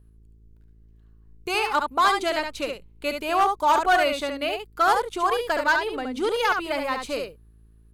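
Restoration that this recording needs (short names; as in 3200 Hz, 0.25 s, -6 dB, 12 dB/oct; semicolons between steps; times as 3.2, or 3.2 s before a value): clip repair -13.5 dBFS; de-hum 54.9 Hz, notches 8; inverse comb 71 ms -5.5 dB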